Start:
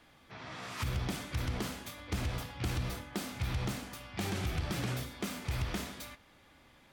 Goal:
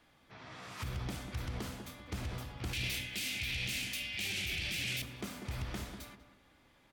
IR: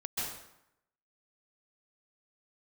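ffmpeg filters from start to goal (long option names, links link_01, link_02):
-filter_complex "[0:a]asettb=1/sr,asplit=3[link_01][link_02][link_03];[link_01]atrim=end=2.734[link_04];[link_02]atrim=start=2.73:end=5.02,asetpts=PTS-STARTPTS,afade=type=in:duration=0.004:curve=qsin,afade=type=out:start_time=2.286:duration=0.004:curve=qsin,highshelf=frequency=1700:width_type=q:width=3:gain=13.5[link_05];[link_03]atrim=start=5.016[link_06];[link_04][link_05]acrossfade=duration=0.004:curve1=hsin:curve2=qsin[link_07];[link_07][link_06]acrossfade=duration=0.004:curve1=qsin:curve2=hsin,alimiter=limit=-23.5dB:level=0:latency=1:release=11,asplit=2[link_08][link_09];[link_09]adelay=194,lowpass=frequency=960:poles=1,volume=-7dB,asplit=2[link_10][link_11];[link_11]adelay=194,lowpass=frequency=960:poles=1,volume=0.3,asplit=2[link_12][link_13];[link_13]adelay=194,lowpass=frequency=960:poles=1,volume=0.3,asplit=2[link_14][link_15];[link_15]adelay=194,lowpass=frequency=960:poles=1,volume=0.3[link_16];[link_08][link_10][link_12][link_14][link_16]amix=inputs=5:normalize=0,volume=-5dB"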